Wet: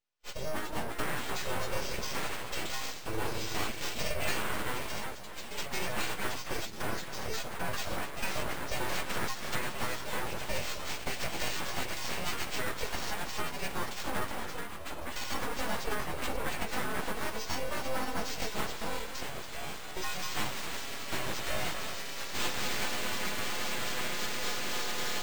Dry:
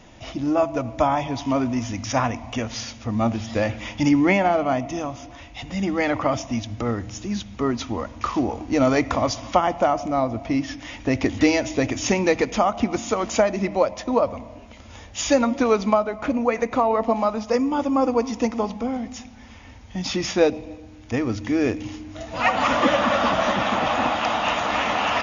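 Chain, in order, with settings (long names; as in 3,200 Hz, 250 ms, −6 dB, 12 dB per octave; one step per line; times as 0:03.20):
every partial snapped to a pitch grid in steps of 3 semitones
noise gate −31 dBFS, range −37 dB
high-shelf EQ 6,100 Hz +9.5 dB
downward compressor, threshold −22 dBFS, peak gain reduction 11.5 dB
flanger 0.17 Hz, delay 4.3 ms, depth 6.4 ms, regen −84%
delay with pitch and tempo change per echo 404 ms, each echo +2 semitones, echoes 3, each echo −6 dB
bad sample-rate conversion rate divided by 4×, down filtered, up hold
delay that swaps between a low-pass and a high-pass 264 ms, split 1,400 Hz, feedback 58%, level −9.5 dB
full-wave rectification
level −1.5 dB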